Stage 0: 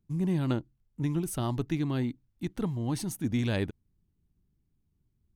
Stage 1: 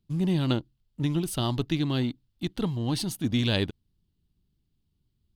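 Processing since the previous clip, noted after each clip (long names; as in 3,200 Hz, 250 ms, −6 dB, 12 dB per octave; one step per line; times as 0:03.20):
flat-topped bell 3,700 Hz +9.5 dB 1 octave
in parallel at −7 dB: dead-zone distortion −42.5 dBFS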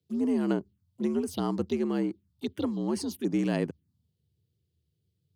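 phaser swept by the level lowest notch 170 Hz, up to 3,600 Hz, full sweep at −24 dBFS
frequency shifter +71 Hz
level −1.5 dB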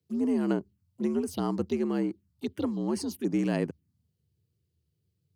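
parametric band 3,500 Hz −5.5 dB 0.32 octaves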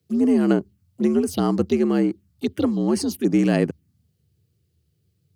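notch filter 960 Hz, Q 6.5
level +9 dB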